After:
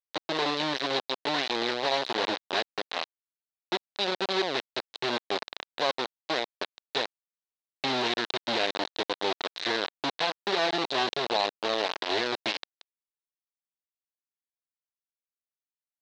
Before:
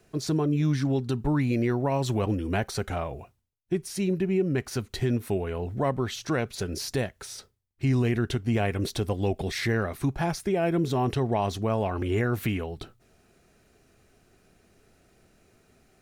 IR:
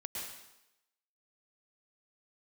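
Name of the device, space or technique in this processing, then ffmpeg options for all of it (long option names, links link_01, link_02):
hand-held game console: -filter_complex "[0:a]asettb=1/sr,asplit=3[link_01][link_02][link_03];[link_01]atrim=end=1.064[link_04];[link_02]atrim=start=1.06:end=1.55,asetpts=PTS-STARTPTS,afade=type=in:duration=0.004:curve=qsin,afade=type=out:start_time=0.486:duration=0.004:curve=qsin,adynamicequalizer=threshold=0.00708:dfrequency=120:dqfactor=2.5:tfrequency=120:tqfactor=2.5:attack=5:release=100:ratio=0.375:range=4:mode=cutabove:tftype=bell[link_05];[link_03]atrim=start=1.546[link_06];[link_04][link_05]acrossfade=duration=0.004:curve1=hsin:curve2=qsin[link_07];[link_07][link_06]acrossfade=duration=0.004:curve1=qsin:curve2=hsin,acrusher=bits=3:mix=0:aa=0.000001,highpass=470,equalizer=frequency=1300:width_type=q:width=4:gain=-5,equalizer=frequency=2300:width_type=q:width=4:gain=-3,equalizer=frequency=3900:width_type=q:width=4:gain=9,lowpass=frequency=4800:width=0.5412,lowpass=frequency=4800:width=1.3066"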